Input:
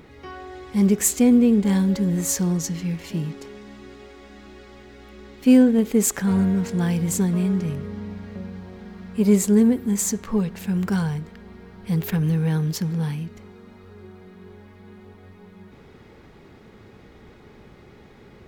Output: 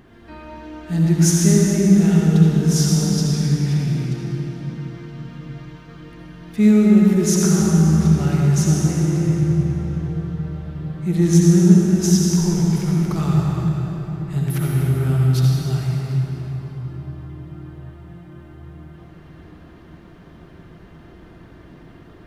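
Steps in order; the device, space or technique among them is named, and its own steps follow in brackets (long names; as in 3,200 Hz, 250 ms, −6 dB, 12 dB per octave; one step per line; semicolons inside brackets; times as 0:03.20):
slowed and reverbed (speed change −17%; convolution reverb RT60 4.1 s, pre-delay 58 ms, DRR −3.5 dB)
level −2 dB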